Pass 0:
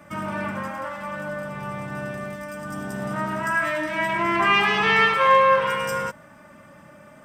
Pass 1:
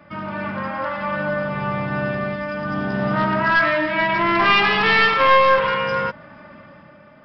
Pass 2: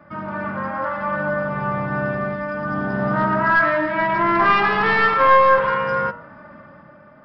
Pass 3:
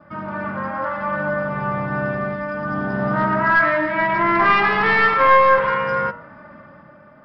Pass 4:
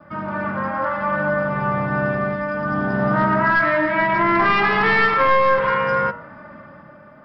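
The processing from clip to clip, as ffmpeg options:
ffmpeg -i in.wav -af "aresample=11025,aeval=exprs='clip(val(0),-1,0.0944)':channel_layout=same,aresample=44100,dynaudnorm=framelen=110:gausssize=13:maxgain=8dB" out.wav
ffmpeg -i in.wav -af "highshelf=frequency=2000:width_type=q:width=1.5:gain=-7.5,bandreject=frequency=95.56:width_type=h:width=4,bandreject=frequency=191.12:width_type=h:width=4,bandreject=frequency=286.68:width_type=h:width=4,bandreject=frequency=382.24:width_type=h:width=4,bandreject=frequency=477.8:width_type=h:width=4,bandreject=frequency=573.36:width_type=h:width=4,bandreject=frequency=668.92:width_type=h:width=4,bandreject=frequency=764.48:width_type=h:width=4,bandreject=frequency=860.04:width_type=h:width=4,bandreject=frequency=955.6:width_type=h:width=4,bandreject=frequency=1051.16:width_type=h:width=4,bandreject=frequency=1146.72:width_type=h:width=4,bandreject=frequency=1242.28:width_type=h:width=4,bandreject=frequency=1337.84:width_type=h:width=4,bandreject=frequency=1433.4:width_type=h:width=4,bandreject=frequency=1528.96:width_type=h:width=4,bandreject=frequency=1624.52:width_type=h:width=4,bandreject=frequency=1720.08:width_type=h:width=4,bandreject=frequency=1815.64:width_type=h:width=4,bandreject=frequency=1911.2:width_type=h:width=4,bandreject=frequency=2006.76:width_type=h:width=4,bandreject=frequency=2102.32:width_type=h:width=4,bandreject=frequency=2197.88:width_type=h:width=4,bandreject=frequency=2293.44:width_type=h:width=4,bandreject=frequency=2389:width_type=h:width=4,bandreject=frequency=2484.56:width_type=h:width=4,bandreject=frequency=2580.12:width_type=h:width=4,bandreject=frequency=2675.68:width_type=h:width=4,bandreject=frequency=2771.24:width_type=h:width=4,bandreject=frequency=2866.8:width_type=h:width=4,bandreject=frequency=2962.36:width_type=h:width=4" out.wav
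ffmpeg -i in.wav -af "adynamicequalizer=threshold=0.0178:dfrequency=2100:dqfactor=4.5:tfrequency=2100:tqfactor=4.5:attack=5:release=100:ratio=0.375:range=2.5:mode=boostabove:tftype=bell" out.wav
ffmpeg -i in.wav -filter_complex "[0:a]acrossover=split=450|3000[link_01][link_02][link_03];[link_02]acompressor=threshold=-17dB:ratio=6[link_04];[link_01][link_04][link_03]amix=inputs=3:normalize=0,volume=2dB" out.wav

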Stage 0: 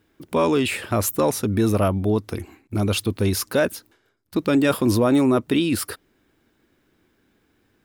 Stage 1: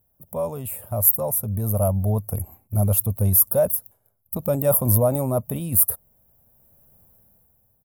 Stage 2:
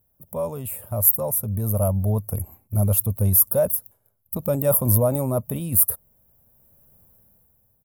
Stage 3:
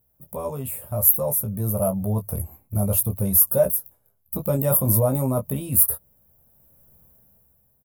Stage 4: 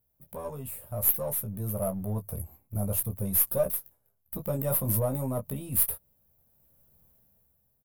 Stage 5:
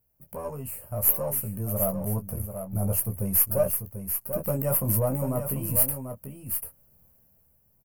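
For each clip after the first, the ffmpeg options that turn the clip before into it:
ffmpeg -i in.wav -af "firequalizer=gain_entry='entry(110,0);entry(190,-5);entry(310,-23);entry(580,-1);entry(1600,-23);entry(4100,-25);entry(12000,14)':delay=0.05:min_phase=1,dynaudnorm=framelen=110:gausssize=17:maxgain=16.5dB,volume=-1.5dB" out.wav
ffmpeg -i in.wav -af "equalizer=frequency=730:width=4.6:gain=-4" out.wav
ffmpeg -i in.wav -af "aecho=1:1:15|27:0.562|0.316,volume=-1dB" out.wav
ffmpeg -i in.wav -af "aeval=exprs='if(lt(val(0),0),0.708*val(0),val(0))':channel_layout=same,volume=-6.5dB" out.wav
ffmpeg -i in.wav -af "asuperstop=centerf=3600:order=8:qfactor=3.5,aecho=1:1:741:0.398,volume=2.5dB" out.wav

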